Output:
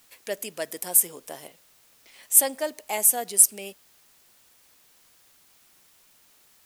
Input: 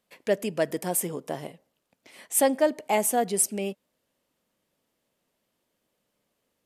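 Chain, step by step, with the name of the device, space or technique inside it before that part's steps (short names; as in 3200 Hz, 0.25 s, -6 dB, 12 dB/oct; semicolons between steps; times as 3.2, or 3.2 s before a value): 1.48–2.23 LPF 5200 Hz; turntable without a phono preamp (RIAA curve recording; white noise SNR 31 dB); gain -5 dB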